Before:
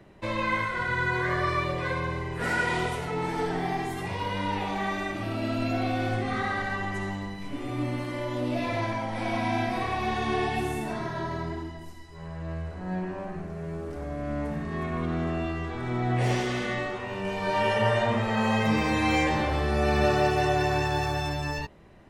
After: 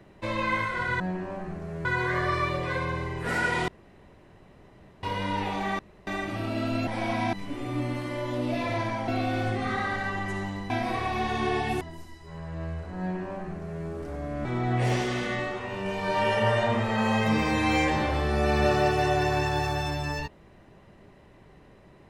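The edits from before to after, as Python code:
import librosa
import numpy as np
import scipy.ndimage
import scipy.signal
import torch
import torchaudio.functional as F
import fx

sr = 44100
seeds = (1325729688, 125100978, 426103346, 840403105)

y = fx.edit(x, sr, fx.room_tone_fill(start_s=2.83, length_s=1.35),
    fx.insert_room_tone(at_s=4.94, length_s=0.28),
    fx.swap(start_s=5.74, length_s=1.62, other_s=9.11, other_length_s=0.46),
    fx.cut(start_s=10.68, length_s=1.01),
    fx.duplicate(start_s=12.88, length_s=0.85, to_s=1.0),
    fx.cut(start_s=14.33, length_s=1.51), tone=tone)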